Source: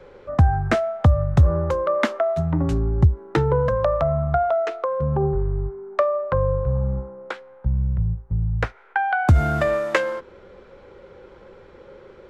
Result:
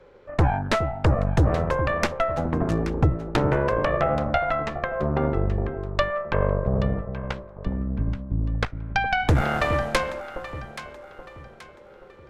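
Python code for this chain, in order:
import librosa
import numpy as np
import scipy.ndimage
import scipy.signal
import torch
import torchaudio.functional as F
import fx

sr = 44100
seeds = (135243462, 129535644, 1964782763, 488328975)

y = fx.cheby_harmonics(x, sr, harmonics=(6,), levels_db=(-8,), full_scale_db=-5.0)
y = fx.echo_alternate(y, sr, ms=414, hz=810.0, feedback_pct=61, wet_db=-8.5)
y = F.gain(torch.from_numpy(y), -6.0).numpy()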